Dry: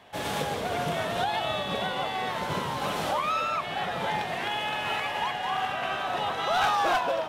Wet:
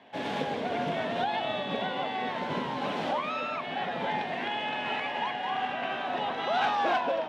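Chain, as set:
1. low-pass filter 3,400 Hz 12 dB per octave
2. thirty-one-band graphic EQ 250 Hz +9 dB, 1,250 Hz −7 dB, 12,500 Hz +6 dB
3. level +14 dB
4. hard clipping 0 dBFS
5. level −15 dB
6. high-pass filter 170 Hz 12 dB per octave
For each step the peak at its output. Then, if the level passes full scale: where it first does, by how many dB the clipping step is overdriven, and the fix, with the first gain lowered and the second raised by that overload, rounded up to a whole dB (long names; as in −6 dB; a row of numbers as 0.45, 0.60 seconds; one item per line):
−16.5, −15.5, −1.5, −1.5, −16.5, −17.5 dBFS
no step passes full scale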